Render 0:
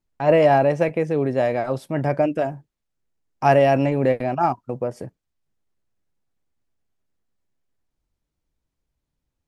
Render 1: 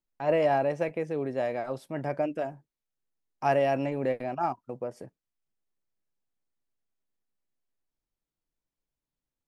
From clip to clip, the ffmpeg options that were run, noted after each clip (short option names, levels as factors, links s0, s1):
-af "equalizer=f=64:t=o:w=2.1:g=-9.5,volume=0.376"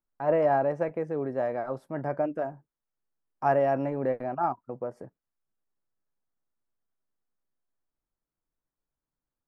-af "highshelf=f=2000:t=q:w=1.5:g=-10.5"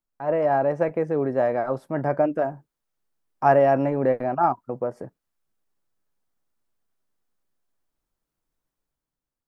-af "dynaudnorm=f=100:g=13:m=2.24"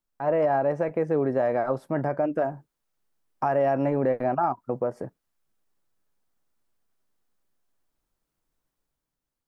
-af "alimiter=limit=0.141:level=0:latency=1:release=219,volume=1.26"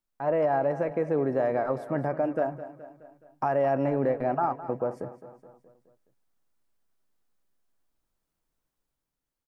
-af "aecho=1:1:211|422|633|844|1055:0.188|0.102|0.0549|0.0297|0.016,volume=0.794"